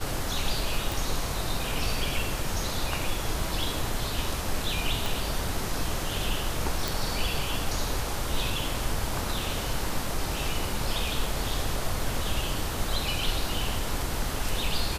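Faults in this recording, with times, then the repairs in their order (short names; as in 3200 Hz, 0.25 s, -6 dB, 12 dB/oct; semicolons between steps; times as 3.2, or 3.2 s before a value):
0.92 pop
5.06 pop
6.88 pop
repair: de-click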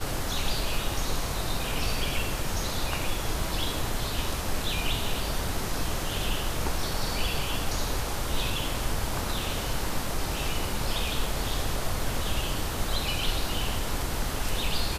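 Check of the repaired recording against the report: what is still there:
5.06 pop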